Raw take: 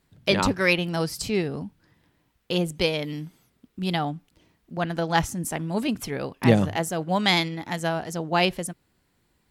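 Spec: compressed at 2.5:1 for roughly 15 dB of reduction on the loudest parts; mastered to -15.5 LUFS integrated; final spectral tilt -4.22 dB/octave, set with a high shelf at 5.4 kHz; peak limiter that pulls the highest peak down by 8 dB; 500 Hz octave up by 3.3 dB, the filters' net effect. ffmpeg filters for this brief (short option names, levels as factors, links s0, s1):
-af "equalizer=f=500:t=o:g=4,highshelf=f=5400:g=8,acompressor=threshold=0.0224:ratio=2.5,volume=8.91,alimiter=limit=0.708:level=0:latency=1"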